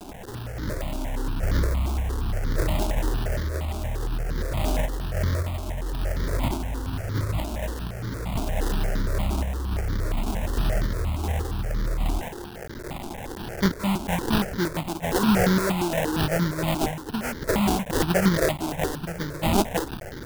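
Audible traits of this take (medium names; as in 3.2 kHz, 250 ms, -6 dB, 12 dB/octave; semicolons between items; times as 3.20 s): a quantiser's noise floor 6-bit, dither triangular; random-step tremolo; aliases and images of a low sample rate 1.2 kHz, jitter 20%; notches that jump at a steady rate 8.6 Hz 500–2600 Hz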